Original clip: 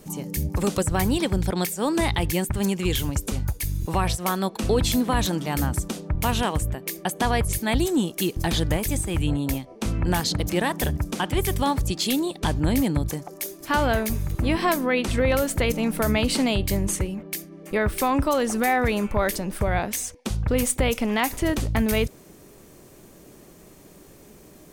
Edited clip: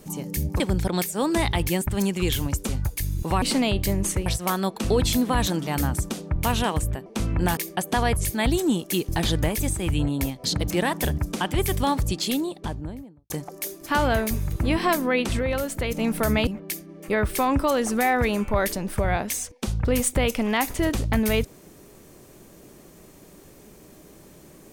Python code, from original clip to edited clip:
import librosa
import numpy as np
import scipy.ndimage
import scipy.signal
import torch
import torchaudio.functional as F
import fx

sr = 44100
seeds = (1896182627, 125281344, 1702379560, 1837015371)

y = fx.studio_fade_out(x, sr, start_s=11.85, length_s=1.24)
y = fx.edit(y, sr, fx.cut(start_s=0.6, length_s=0.63),
    fx.move(start_s=9.72, length_s=0.51, to_s=6.85),
    fx.clip_gain(start_s=15.18, length_s=0.58, db=-4.5),
    fx.move(start_s=16.26, length_s=0.84, to_s=4.05), tone=tone)